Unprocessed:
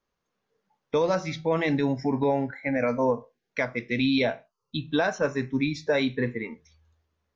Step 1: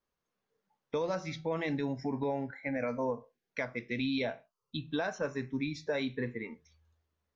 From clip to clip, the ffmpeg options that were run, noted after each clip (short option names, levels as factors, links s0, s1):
-af "acompressor=threshold=0.0398:ratio=1.5,volume=0.501"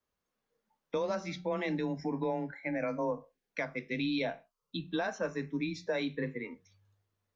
-af "afreqshift=20"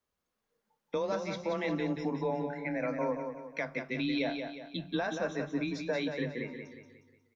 -af "aecho=1:1:180|360|540|720|900:0.473|0.208|0.0916|0.0403|0.0177"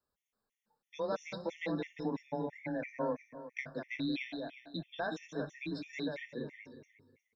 -af "afftfilt=real='re*gt(sin(2*PI*3*pts/sr)*(1-2*mod(floor(b*sr/1024/1800),2)),0)':imag='im*gt(sin(2*PI*3*pts/sr)*(1-2*mod(floor(b*sr/1024/1800),2)),0)':win_size=1024:overlap=0.75,volume=0.794"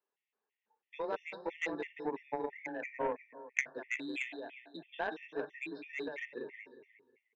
-af "highpass=360,equalizer=f=400:t=q:w=4:g=10,equalizer=f=570:t=q:w=4:g=-3,equalizer=f=880:t=q:w=4:g=6,equalizer=f=1300:t=q:w=4:g=-3,equalizer=f=1900:t=q:w=4:g=7,equalizer=f=2700:t=q:w=4:g=8,lowpass=f=3400:w=0.5412,lowpass=f=3400:w=1.3066,aeval=exprs='0.119*(cos(1*acos(clip(val(0)/0.119,-1,1)))-cos(1*PI/2))+0.0266*(cos(3*acos(clip(val(0)/0.119,-1,1)))-cos(3*PI/2))':c=same,volume=2"